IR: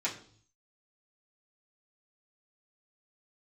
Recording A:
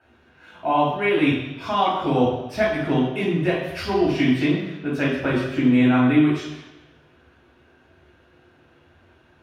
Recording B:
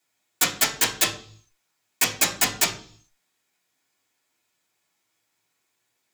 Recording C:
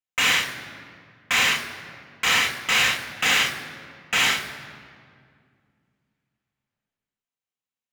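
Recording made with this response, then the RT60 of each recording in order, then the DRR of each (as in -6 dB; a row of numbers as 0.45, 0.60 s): B; 1.1, 0.50, 2.2 s; -6.5, -8.5, 1.5 dB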